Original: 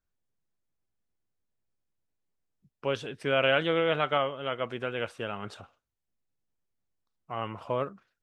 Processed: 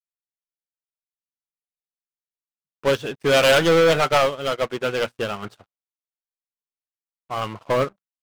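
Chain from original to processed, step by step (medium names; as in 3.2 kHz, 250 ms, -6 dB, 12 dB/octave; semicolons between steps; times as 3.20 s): hum notches 60/120/180/240 Hz; waveshaping leveller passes 5; upward expansion 2.5:1, over -35 dBFS; trim +1 dB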